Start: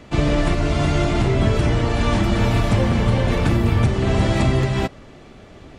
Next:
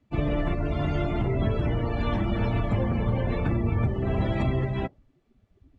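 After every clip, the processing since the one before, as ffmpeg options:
-af "afftdn=nr=23:nf=-28,volume=-7.5dB"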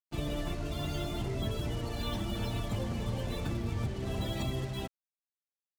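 -af "aexciter=amount=8.1:drive=3.7:freq=3.2k,acrusher=bits=5:mix=0:aa=0.5,volume=-9dB"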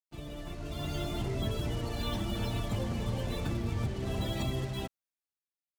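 -af "dynaudnorm=f=110:g=13:m=9.5dB,volume=-8.5dB"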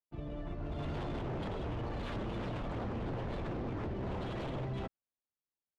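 -af "aeval=exprs='0.0224*(abs(mod(val(0)/0.0224+3,4)-2)-1)':c=same,adynamicsmooth=sensitivity=4.5:basefreq=1.4k,volume=1dB"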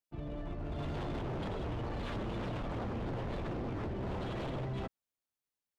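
-af "asoftclip=type=hard:threshold=-35.5dB,volume=1dB"

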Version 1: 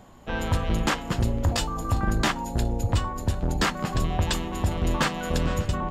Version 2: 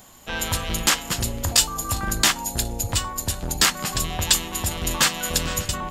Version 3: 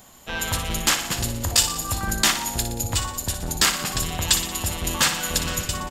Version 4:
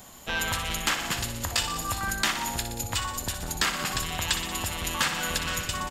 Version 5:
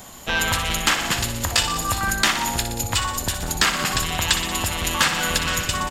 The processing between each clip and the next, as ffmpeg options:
-af "crystalizer=i=9:c=0,volume=-4dB"
-af "aecho=1:1:60|120|180|240|300|360|420:0.335|0.201|0.121|0.0724|0.0434|0.026|0.0156,volume=-1dB"
-filter_complex "[0:a]acrossover=split=930|3200[a][b][c];[a]acompressor=threshold=-35dB:ratio=4[d];[b]acompressor=threshold=-27dB:ratio=4[e];[c]acompressor=threshold=-34dB:ratio=4[f];[d][e][f]amix=inputs=3:normalize=0,volume=1.5dB"
-af "volume=7dB" -ar 44100 -c:a nellymoser

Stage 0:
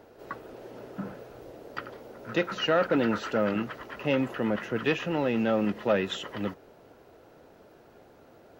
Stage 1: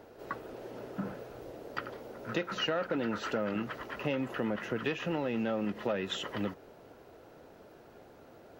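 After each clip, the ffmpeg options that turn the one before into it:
-af "acompressor=threshold=-29dB:ratio=6"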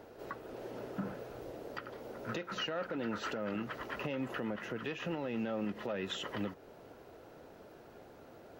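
-af "alimiter=level_in=4dB:limit=-24dB:level=0:latency=1:release=294,volume=-4dB"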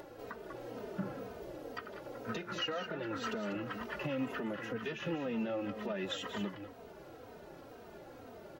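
-filter_complex "[0:a]acompressor=mode=upward:threshold=-45dB:ratio=2.5,asplit=2[a][b];[b]aecho=0:1:194:0.355[c];[a][c]amix=inputs=2:normalize=0,asplit=2[d][e];[e]adelay=3,afreqshift=-2[f];[d][f]amix=inputs=2:normalize=1,volume=2.5dB"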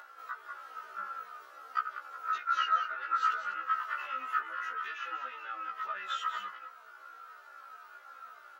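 -af "highpass=f=1.3k:t=q:w=9.4,afftfilt=real='re*1.73*eq(mod(b,3),0)':imag='im*1.73*eq(mod(b,3),0)':win_size=2048:overlap=0.75"

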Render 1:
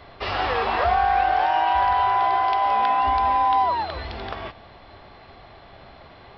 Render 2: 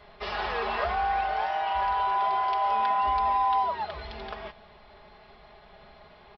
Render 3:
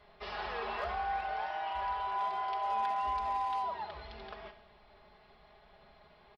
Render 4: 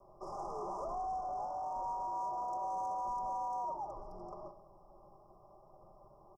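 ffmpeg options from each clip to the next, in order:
-af "equalizer=f=270:t=o:w=0.53:g=-5.5,aecho=1:1:4.8:0.74,volume=-7.5dB"
-af "asoftclip=type=hard:threshold=-19dB,aecho=1:1:67|134|201|268|335|402:0.237|0.128|0.0691|0.0373|0.0202|0.0109,volume=-8.5dB"
-af "asoftclip=type=tanh:threshold=-36dB,afreqshift=-38,asuperstop=centerf=2600:order=20:qfactor=0.62,volume=1.5dB"

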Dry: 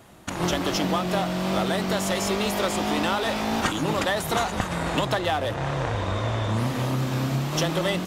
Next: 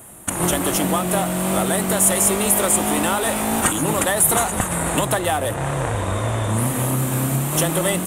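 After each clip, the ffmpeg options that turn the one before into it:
-af "highshelf=f=6.9k:t=q:w=3:g=12,volume=4dB"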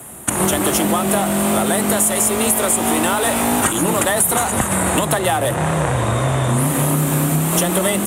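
-af "acompressor=threshold=-19dB:ratio=6,afreqshift=20,volume=6dB"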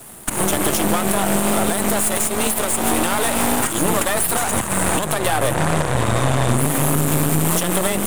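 -af "alimiter=limit=-10dB:level=0:latency=1:release=199,aeval=exprs='0.316*(cos(1*acos(clip(val(0)/0.316,-1,1)))-cos(1*PI/2))+0.0794*(cos(4*acos(clip(val(0)/0.316,-1,1)))-cos(4*PI/2))':c=same,aeval=exprs='sgn(val(0))*max(abs(val(0))-0.01,0)':c=same,volume=1dB"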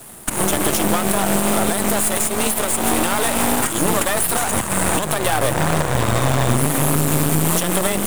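-af "acrusher=bits=3:mode=log:mix=0:aa=0.000001"

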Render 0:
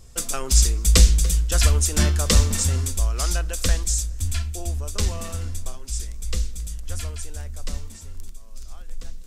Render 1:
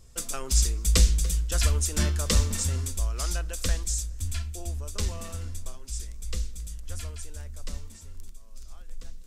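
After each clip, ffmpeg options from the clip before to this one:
-af "bandreject=f=750:w=15,volume=-6dB"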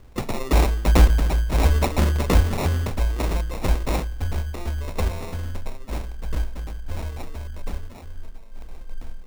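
-af "acrusher=samples=28:mix=1:aa=0.000001,volume=5.5dB"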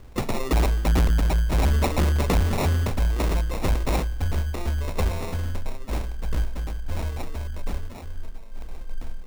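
-af "asoftclip=type=tanh:threshold=-18dB,volume=2.5dB"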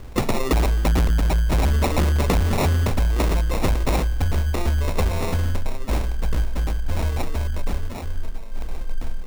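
-af "acompressor=threshold=-24dB:ratio=6,volume=7.5dB"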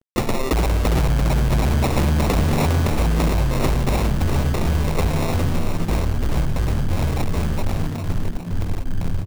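-filter_complex "[0:a]aeval=exprs='val(0)+0.00794*(sin(2*PI*60*n/s)+sin(2*PI*2*60*n/s)/2+sin(2*PI*3*60*n/s)/3+sin(2*PI*4*60*n/s)/4+sin(2*PI*5*60*n/s)/5)':c=same,acrusher=bits=3:mix=0:aa=0.5,asplit=6[a][b][c][d][e][f];[b]adelay=407,afreqshift=79,volume=-6.5dB[g];[c]adelay=814,afreqshift=158,volume=-14.2dB[h];[d]adelay=1221,afreqshift=237,volume=-22dB[i];[e]adelay=1628,afreqshift=316,volume=-29.7dB[j];[f]adelay=2035,afreqshift=395,volume=-37.5dB[k];[a][g][h][i][j][k]amix=inputs=6:normalize=0"

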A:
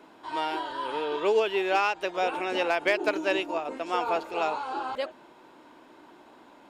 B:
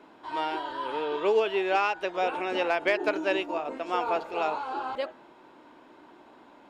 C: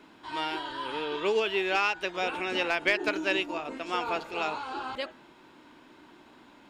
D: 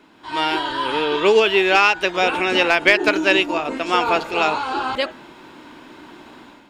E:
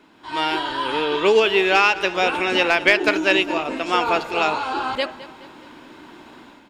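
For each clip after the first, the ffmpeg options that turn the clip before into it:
-af "highshelf=f=6k:g=-10,bandreject=f=164:t=h:w=4,bandreject=f=328:t=h:w=4,bandreject=f=492:t=h:w=4,bandreject=f=656:t=h:w=4,bandreject=f=820:t=h:w=4,bandreject=f=984:t=h:w=4,bandreject=f=1.148k:t=h:w=4,bandreject=f=1.312k:t=h:w=4,bandreject=f=1.476k:t=h:w=4,bandreject=f=1.64k:t=h:w=4,bandreject=f=1.804k:t=h:w=4,bandreject=f=1.968k:t=h:w=4"
-af "equalizer=f=640:t=o:w=2.3:g=-11.5,volume=6dB"
-af "dynaudnorm=f=130:g=5:m=10dB,volume=2.5dB"
-af "aecho=1:1:211|422|633|844:0.141|0.0664|0.0312|0.0147,volume=-1.5dB"

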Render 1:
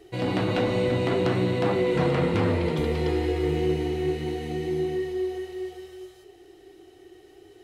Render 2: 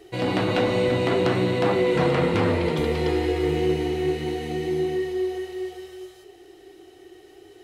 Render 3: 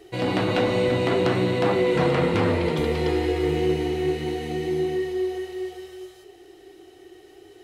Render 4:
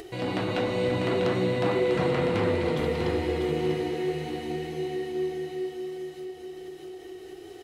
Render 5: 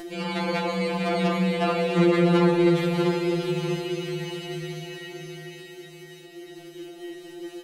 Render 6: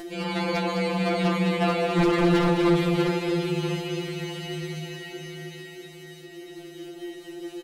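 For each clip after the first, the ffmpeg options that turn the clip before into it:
-af "lowshelf=f=250:g=-5,volume=4dB"
-af anull
-af "aecho=1:1:646|1292|1938|2584:0.473|0.17|0.0613|0.0221,acompressor=mode=upward:threshold=-28dB:ratio=2.5,volume=-5.5dB"
-af "afftfilt=real='re*2.83*eq(mod(b,8),0)':imag='im*2.83*eq(mod(b,8),0)':win_size=2048:overlap=0.75,volume=7dB"
-filter_complex "[0:a]aeval=exprs='0.178*(abs(mod(val(0)/0.178+3,4)-2)-1)':c=same,asplit=2[a][b];[b]aecho=0:1:210:0.398[c];[a][c]amix=inputs=2:normalize=0"

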